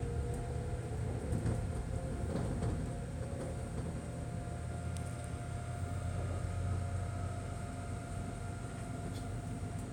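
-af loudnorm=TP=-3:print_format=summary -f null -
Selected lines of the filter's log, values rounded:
Input Integrated:    -40.6 LUFS
Input True Peak:     -23.7 dBTP
Input LRA:             3.4 LU
Input Threshold:     -50.6 LUFS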